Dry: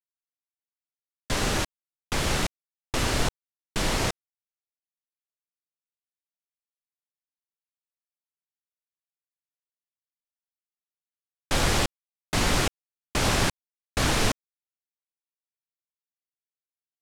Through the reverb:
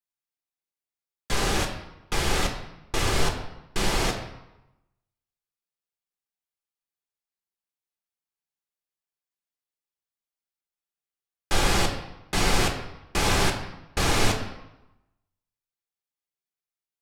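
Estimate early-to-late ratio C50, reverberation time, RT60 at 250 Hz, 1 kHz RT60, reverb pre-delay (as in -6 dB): 7.5 dB, 0.95 s, 0.95 s, 0.95 s, 5 ms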